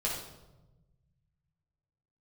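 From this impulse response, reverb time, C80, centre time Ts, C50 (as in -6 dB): 1.1 s, 6.0 dB, 47 ms, 2.5 dB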